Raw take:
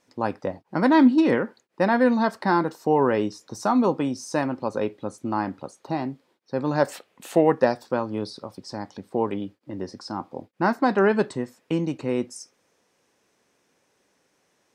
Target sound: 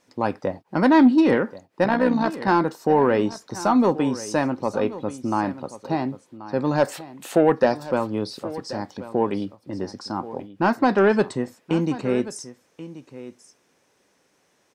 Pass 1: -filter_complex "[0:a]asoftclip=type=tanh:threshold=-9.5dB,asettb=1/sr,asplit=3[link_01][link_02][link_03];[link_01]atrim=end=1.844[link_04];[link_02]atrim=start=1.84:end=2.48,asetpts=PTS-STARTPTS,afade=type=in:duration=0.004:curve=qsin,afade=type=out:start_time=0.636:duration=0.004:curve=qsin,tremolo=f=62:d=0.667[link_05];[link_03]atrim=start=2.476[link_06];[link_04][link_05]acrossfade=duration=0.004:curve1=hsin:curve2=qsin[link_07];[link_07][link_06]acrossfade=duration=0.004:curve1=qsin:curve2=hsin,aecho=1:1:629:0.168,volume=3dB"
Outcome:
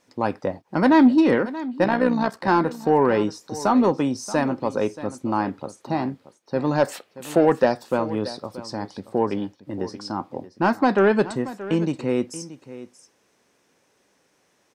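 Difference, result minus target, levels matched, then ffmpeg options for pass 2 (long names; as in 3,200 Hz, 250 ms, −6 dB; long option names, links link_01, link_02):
echo 453 ms early
-filter_complex "[0:a]asoftclip=type=tanh:threshold=-9.5dB,asettb=1/sr,asplit=3[link_01][link_02][link_03];[link_01]atrim=end=1.844[link_04];[link_02]atrim=start=1.84:end=2.48,asetpts=PTS-STARTPTS,afade=type=in:duration=0.004:curve=qsin,afade=type=out:start_time=0.636:duration=0.004:curve=qsin,tremolo=f=62:d=0.667[link_05];[link_03]atrim=start=2.476[link_06];[link_04][link_05]acrossfade=duration=0.004:curve1=hsin:curve2=qsin[link_07];[link_07][link_06]acrossfade=duration=0.004:curve1=qsin:curve2=hsin,aecho=1:1:1082:0.168,volume=3dB"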